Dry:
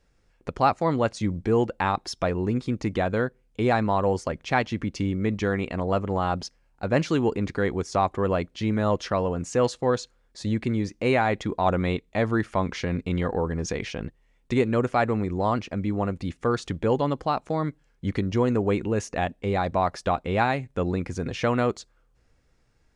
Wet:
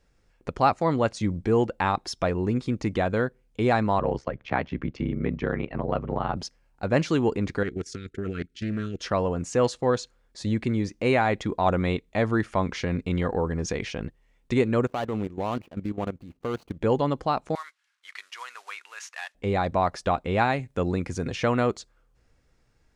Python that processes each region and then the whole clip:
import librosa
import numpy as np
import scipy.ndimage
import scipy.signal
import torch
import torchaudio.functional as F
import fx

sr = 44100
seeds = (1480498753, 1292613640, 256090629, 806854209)

y = fx.chain(x, sr, fx.lowpass(hz=2800.0, slope=12),
    fx.ring_mod(carrier_hz=34.0),
    fx.band_squash(depth_pct=40), at=(3.99, 6.37))
y = fx.chain(y, sr, fx.level_steps(step_db=14),
    fx.brickwall_bandstop(low_hz=480.0, high_hz=1300.0),
    fx.doppler_dist(depth_ms=0.24), at=(7.63, 9.01))
y = fx.chain(y, sr, fx.median_filter(points=25),
    fx.low_shelf(hz=82.0, db=-8.0),
    fx.level_steps(step_db=14), at=(14.87, 16.81))
y = fx.chain(y, sr, fx.cvsd(bps=64000),
    fx.highpass(hz=1200.0, slope=24),
    fx.air_absorb(metres=50.0), at=(17.55, 19.35))
y = fx.chain(y, sr, fx.highpass(hz=41.0, slope=12),
    fx.high_shelf(hz=5000.0, db=4.5), at=(20.59, 21.36))